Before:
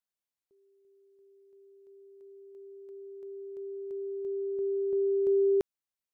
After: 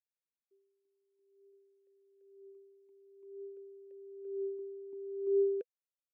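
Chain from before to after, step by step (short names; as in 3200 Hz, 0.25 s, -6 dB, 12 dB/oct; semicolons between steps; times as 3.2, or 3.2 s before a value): vowel sweep e-u 0.51 Hz; gain -2 dB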